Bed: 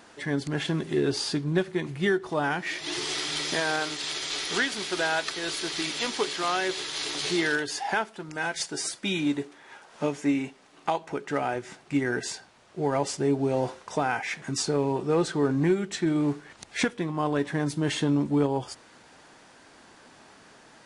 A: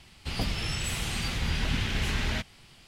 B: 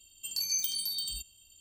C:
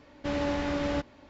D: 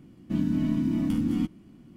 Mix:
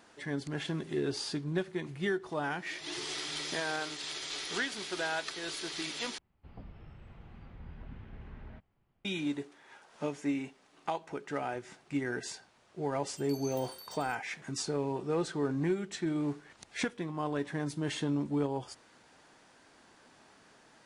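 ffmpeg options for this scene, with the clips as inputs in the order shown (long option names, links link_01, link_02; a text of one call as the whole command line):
ffmpeg -i bed.wav -i cue0.wav -i cue1.wav -filter_complex "[0:a]volume=-7.5dB[link_01];[1:a]lowpass=1100[link_02];[2:a]agate=range=-33dB:threshold=-54dB:ratio=3:release=100:detection=peak[link_03];[link_01]asplit=2[link_04][link_05];[link_04]atrim=end=6.184[link_06];[link_02]atrim=end=2.87,asetpts=PTS-STARTPTS,volume=-17.5dB[link_07];[link_05]atrim=start=9.046[link_08];[link_03]atrim=end=1.6,asetpts=PTS-STARTPTS,volume=-16.5dB,afade=type=in:duration=0.004:curve=hsin,afade=type=out:start_time=1.596:duration=0.004:curve=hsin,adelay=12930[link_09];[link_06][link_07]acrossfade=duration=0.004:curve1=hsin:curve2=hsin[link_10];[link_10][link_08]acrossfade=duration=0.004:curve1=hsin:curve2=hsin[link_11];[link_11][link_09]amix=inputs=2:normalize=0" out.wav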